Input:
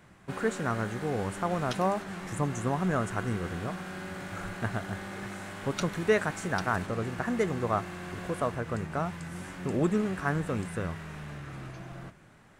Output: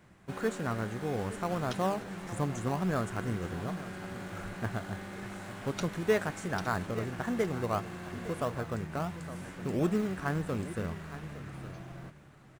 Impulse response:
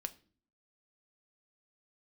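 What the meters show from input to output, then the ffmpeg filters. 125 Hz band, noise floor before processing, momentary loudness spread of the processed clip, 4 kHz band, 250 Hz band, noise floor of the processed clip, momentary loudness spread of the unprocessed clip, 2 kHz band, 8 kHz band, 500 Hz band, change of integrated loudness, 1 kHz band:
−2.0 dB, −55 dBFS, 12 LU, −2.5 dB, −2.0 dB, −55 dBFS, 13 LU, −4.5 dB, −3.0 dB, −2.5 dB, −2.5 dB, −3.5 dB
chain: -filter_complex "[0:a]aecho=1:1:864:0.188,asplit=2[link_01][link_02];[link_02]acrusher=samples=21:mix=1:aa=0.000001:lfo=1:lforange=12.6:lforate=1.6,volume=-10dB[link_03];[link_01][link_03]amix=inputs=2:normalize=0,volume=-4.5dB"

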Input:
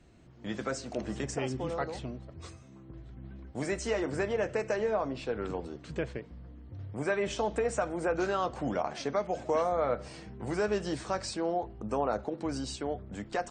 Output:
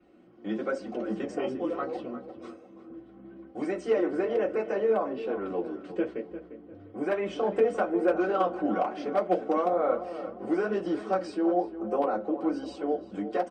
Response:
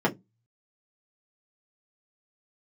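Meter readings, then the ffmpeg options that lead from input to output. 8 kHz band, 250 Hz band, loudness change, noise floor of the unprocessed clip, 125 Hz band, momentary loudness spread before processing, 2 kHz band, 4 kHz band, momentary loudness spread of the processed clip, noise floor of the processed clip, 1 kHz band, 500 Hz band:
below −10 dB, +6.0 dB, +4.0 dB, −52 dBFS, −7.0 dB, 16 LU, −1.0 dB, −5.5 dB, 18 LU, −52 dBFS, +3.5 dB, +4.0 dB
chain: -filter_complex "[0:a]flanger=delay=0.8:depth=9.3:regen=54:speed=1.1:shape=sinusoidal,asplit=2[link_01][link_02];[link_02]adelay=350,lowpass=frequency=2200:poles=1,volume=-11.5dB,asplit=2[link_03][link_04];[link_04]adelay=350,lowpass=frequency=2200:poles=1,volume=0.36,asplit=2[link_05][link_06];[link_06]adelay=350,lowpass=frequency=2200:poles=1,volume=0.36,asplit=2[link_07][link_08];[link_08]adelay=350,lowpass=frequency=2200:poles=1,volume=0.36[link_09];[link_01][link_03][link_05][link_07][link_09]amix=inputs=5:normalize=0,asplit=2[link_10][link_11];[link_11]acrusher=bits=3:mix=0:aa=0.000001,volume=-10.5dB[link_12];[link_10][link_12]amix=inputs=2:normalize=0[link_13];[1:a]atrim=start_sample=2205,asetrate=70560,aresample=44100[link_14];[link_13][link_14]afir=irnorm=-1:irlink=0,adynamicequalizer=threshold=0.00631:dfrequency=5600:dqfactor=0.7:tfrequency=5600:tqfactor=0.7:attack=5:release=100:ratio=0.375:range=2:mode=cutabove:tftype=highshelf,volume=-7.5dB"

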